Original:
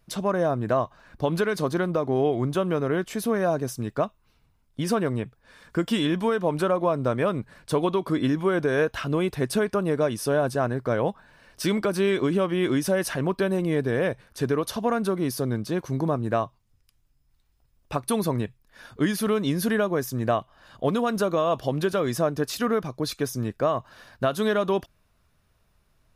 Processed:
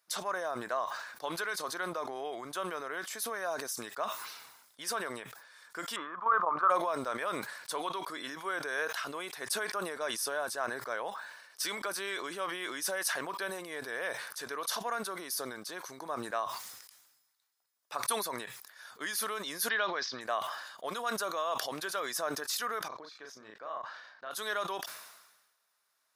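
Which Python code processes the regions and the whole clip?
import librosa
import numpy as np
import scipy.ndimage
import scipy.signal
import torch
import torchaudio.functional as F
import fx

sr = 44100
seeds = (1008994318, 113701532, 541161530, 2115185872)

y = fx.chain(x, sr, fx.lowpass_res(hz=1200.0, q=12.0),
    fx.level_steps(step_db=9), at=(5.96, 6.7))
y = fx.chain(y, sr, fx.steep_lowpass(hz=4800.0, slope=48),
    fx.high_shelf(hz=2300.0, db=11.5), at=(19.69, 20.21))
y = fx.chain(y, sr, fx.level_steps(step_db=15),
    fx.air_absorb(metres=190.0),
    fx.doubler(ms=37.0, db=-4.0), at=(22.88, 24.31))
y = scipy.signal.sosfilt(scipy.signal.bessel(2, 1500.0, 'highpass', norm='mag', fs=sr, output='sos'), y)
y = fx.peak_eq(y, sr, hz=2700.0, db=-8.0, octaves=0.67)
y = fx.sustainer(y, sr, db_per_s=50.0)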